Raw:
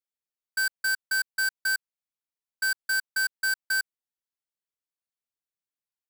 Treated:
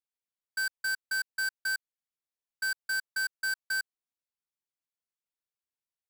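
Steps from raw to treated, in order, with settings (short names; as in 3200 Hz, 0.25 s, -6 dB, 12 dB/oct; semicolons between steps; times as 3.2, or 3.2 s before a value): high shelf 11000 Hz -3.5 dB; gain -4.5 dB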